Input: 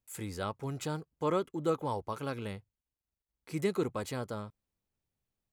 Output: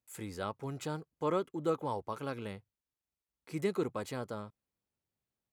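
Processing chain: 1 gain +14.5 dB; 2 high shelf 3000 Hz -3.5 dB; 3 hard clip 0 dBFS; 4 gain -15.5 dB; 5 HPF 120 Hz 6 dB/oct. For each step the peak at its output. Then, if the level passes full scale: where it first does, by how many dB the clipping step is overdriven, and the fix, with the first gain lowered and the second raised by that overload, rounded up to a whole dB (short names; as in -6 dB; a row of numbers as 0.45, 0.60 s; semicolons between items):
-3.5, -4.0, -4.0, -19.5, -19.0 dBFS; no overload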